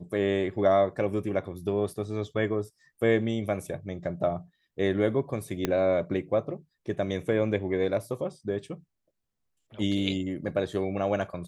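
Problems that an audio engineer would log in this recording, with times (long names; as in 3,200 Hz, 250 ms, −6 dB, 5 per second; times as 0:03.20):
0:05.65: click −12 dBFS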